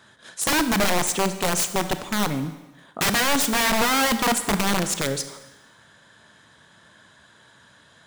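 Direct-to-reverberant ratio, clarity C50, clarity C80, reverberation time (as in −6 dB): 10.0 dB, 11.0 dB, 13.0 dB, 1.1 s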